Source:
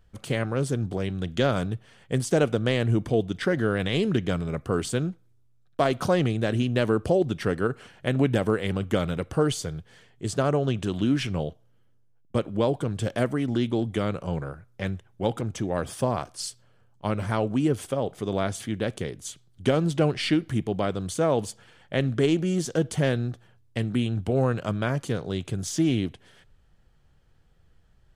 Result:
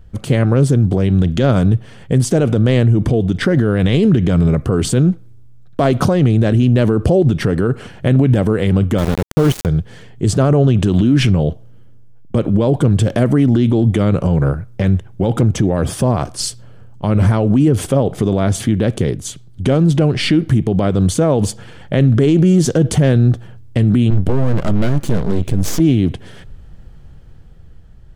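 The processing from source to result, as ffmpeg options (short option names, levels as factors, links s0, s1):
-filter_complex "[0:a]asettb=1/sr,asplit=3[s0][s1][s2];[s0]atrim=end=8.984[s3];[s1]atrim=start=8.98:end=9.66,asetpts=PTS-STARTPTS,afade=t=in:d=0.004:c=qsin,afade=t=out:st=0.676:d=0.004:c=qsin,aeval=exprs='val(0)*gte(abs(val(0)),0.0501)':c=same[s4];[s2]atrim=start=9.656[s5];[s3][s4]acrossfade=d=0.004:c1=hsin:c2=qsin[s6];[s6][s5]acrossfade=d=0.004:c1=qsin:c2=hsin,asettb=1/sr,asplit=3[s7][s8][s9];[s7]atrim=end=24.104[s10];[s8]atrim=start=24.1:end=25.8,asetpts=PTS-STARTPTS,afade=t=in:d=0.004:c=qsin,afade=t=out:st=1.696:d=0.004:c=qsin,aeval=exprs='max(val(0),0)':c=same[s11];[s9]atrim=start=25.796[s12];[s10][s11]acrossfade=d=0.004:c1=hsin:c2=qsin[s13];[s13][s12]acrossfade=d=0.004:c1=qsin:c2=hsin,lowshelf=f=460:g=11,dynaudnorm=f=200:g=11:m=3.76,alimiter=level_in=3.98:limit=0.891:release=50:level=0:latency=1,volume=0.631"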